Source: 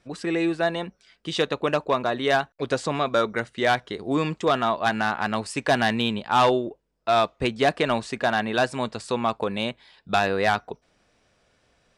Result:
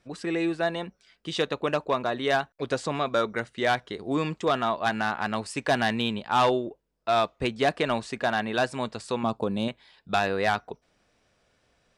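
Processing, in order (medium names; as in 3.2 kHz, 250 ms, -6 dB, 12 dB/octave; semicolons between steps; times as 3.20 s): 9.23–9.68 s: ten-band graphic EQ 125 Hz +5 dB, 250 Hz +5 dB, 2 kHz -11 dB; trim -3 dB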